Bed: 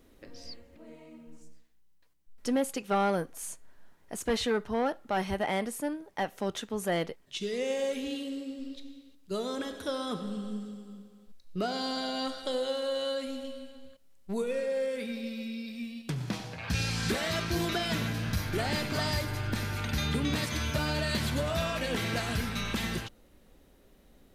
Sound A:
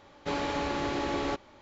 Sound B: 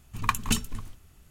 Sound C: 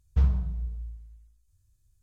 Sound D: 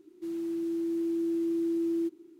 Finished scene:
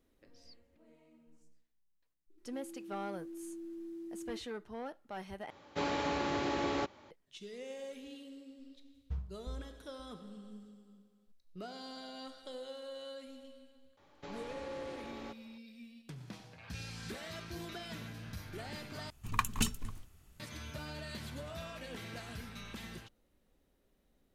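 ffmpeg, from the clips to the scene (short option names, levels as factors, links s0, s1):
-filter_complex "[1:a]asplit=2[s0][s1];[0:a]volume=0.2[s2];[s0]highpass=69[s3];[3:a]aeval=exprs='val(0)*pow(10,-26*if(lt(mod(1.9*n/s,1),2*abs(1.9)/1000),1-mod(1.9*n/s,1)/(2*abs(1.9)/1000),(mod(1.9*n/s,1)-2*abs(1.9)/1000)/(1-2*abs(1.9)/1000))/20)':c=same[s4];[s1]acompressor=threshold=0.0251:ratio=6:attack=3.2:release=140:knee=1:detection=peak[s5];[s2]asplit=3[s6][s7][s8];[s6]atrim=end=5.504[s9];[s3]atrim=end=1.61,asetpts=PTS-STARTPTS,volume=0.708[s10];[s7]atrim=start=7.106:end=19.104[s11];[2:a]atrim=end=1.3,asetpts=PTS-STARTPTS,volume=0.501[s12];[s8]atrim=start=20.396[s13];[4:a]atrim=end=2.39,asetpts=PTS-STARTPTS,volume=0.158,afade=t=in:d=0.004:c=hsin,afade=t=out:st=2.386:d=0.004:c=hsin,adelay=2300[s14];[s4]atrim=end=2.02,asetpts=PTS-STARTPTS,volume=0.473,afade=t=in:d=0.004:c=hsin,afade=t=out:st=2.016:d=0.004:c=hsin,adelay=8940[s15];[s5]atrim=end=1.61,asetpts=PTS-STARTPTS,volume=0.299,afade=t=in:d=0.004:c=hsin,afade=t=out:st=1.606:d=0.004:c=hsin,adelay=13970[s16];[s9][s10]acrossfade=d=0.004:c1=hsin:c2=hsin[s17];[s17][s11]acrossfade=d=0.004:c1=hsin:c2=hsin[s18];[s18][s12]acrossfade=d=0.004:c1=hsin:c2=hsin[s19];[s19][s13]acrossfade=d=0.004:c1=hsin:c2=hsin[s20];[s20][s14][s15][s16]amix=inputs=4:normalize=0"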